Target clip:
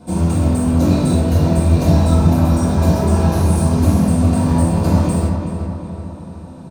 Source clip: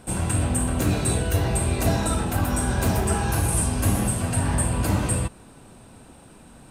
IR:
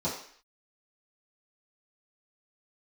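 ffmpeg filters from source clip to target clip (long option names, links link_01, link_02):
-filter_complex "[0:a]asettb=1/sr,asplit=3[link_01][link_02][link_03];[link_01]atrim=end=1.684[link_04];[link_02]atrim=start=1.68:end=2.32,asetpts=PTS-STARTPTS,afade=type=in:duration=0.004:curve=qsin,afade=type=out:start_time=0.636:duration=0.004:curve=qsin,asubboost=boost=12:cutoff=140[link_05];[link_03]atrim=start=2.316[link_06];[link_04][link_05]acrossfade=duration=0.004:curve1=hsin:curve2=qsin[link_07];[link_07][link_06]acrossfade=duration=0.004:curve1=qsin:curve2=hsin,asplit=2[link_08][link_09];[link_09]aeval=exprs='(mod(8.41*val(0)+1,2)-1)/8.41':channel_layout=same,volume=-12dB[link_10];[link_08][link_10]amix=inputs=2:normalize=0,asplit=2[link_11][link_12];[link_12]adelay=375,lowpass=frequency=2900:poles=1,volume=-6.5dB,asplit=2[link_13][link_14];[link_14]adelay=375,lowpass=frequency=2900:poles=1,volume=0.54,asplit=2[link_15][link_16];[link_16]adelay=375,lowpass=frequency=2900:poles=1,volume=0.54,asplit=2[link_17][link_18];[link_18]adelay=375,lowpass=frequency=2900:poles=1,volume=0.54,asplit=2[link_19][link_20];[link_20]adelay=375,lowpass=frequency=2900:poles=1,volume=0.54,asplit=2[link_21][link_22];[link_22]adelay=375,lowpass=frequency=2900:poles=1,volume=0.54,asplit=2[link_23][link_24];[link_24]adelay=375,lowpass=frequency=2900:poles=1,volume=0.54[link_25];[link_11][link_13][link_15][link_17][link_19][link_21][link_23][link_25]amix=inputs=8:normalize=0[link_26];[1:a]atrim=start_sample=2205,afade=type=out:start_time=0.15:duration=0.01,atrim=end_sample=7056[link_27];[link_26][link_27]afir=irnorm=-1:irlink=0,volume=-5.5dB"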